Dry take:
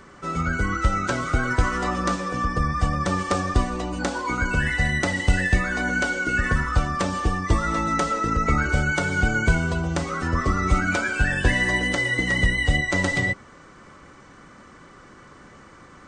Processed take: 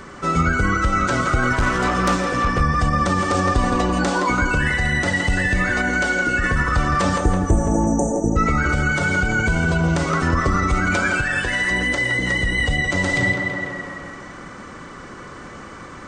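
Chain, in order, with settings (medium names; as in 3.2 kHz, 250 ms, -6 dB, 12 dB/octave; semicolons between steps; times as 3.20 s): 1.53–2.61 s: valve stage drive 21 dB, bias 0.4; 7.17–8.36 s: spectral selection erased 910–5900 Hz; on a send: tape echo 166 ms, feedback 69%, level -8 dB, low-pass 3.4 kHz; on the sum: peak limiter -15 dBFS, peak gain reduction 8 dB; 11.21–11.71 s: bass shelf 400 Hz -9 dB; gain riding within 4 dB 0.5 s; trim +5.5 dB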